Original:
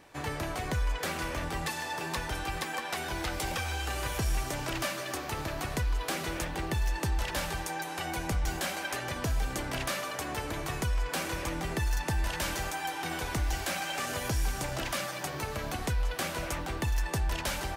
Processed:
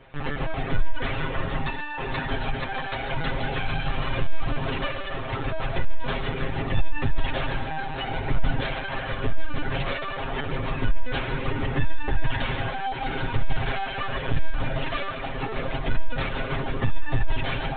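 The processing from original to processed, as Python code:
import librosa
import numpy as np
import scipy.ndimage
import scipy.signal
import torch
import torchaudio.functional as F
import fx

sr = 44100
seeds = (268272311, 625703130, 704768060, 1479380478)

y = fx.echo_feedback(x, sr, ms=140, feedback_pct=46, wet_db=-10)
y = fx.lpc_vocoder(y, sr, seeds[0], excitation='pitch_kept', order=16)
y = fx.low_shelf(y, sr, hz=130.0, db=7.0)
y = fx.notch(y, sr, hz=1000.0, q=21.0)
y = y + 0.83 * np.pad(y, (int(7.5 * sr / 1000.0), 0))[:len(y)]
y = y * 10.0 ** (2.0 / 20.0)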